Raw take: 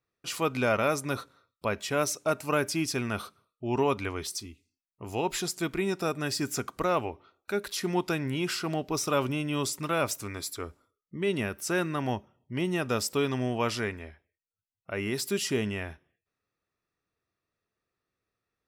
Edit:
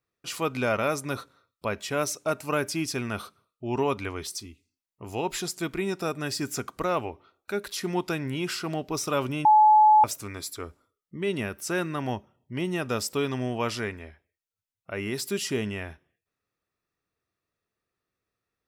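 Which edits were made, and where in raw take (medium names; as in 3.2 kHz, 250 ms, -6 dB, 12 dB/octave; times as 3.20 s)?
9.45–10.04 s: bleep 856 Hz -13 dBFS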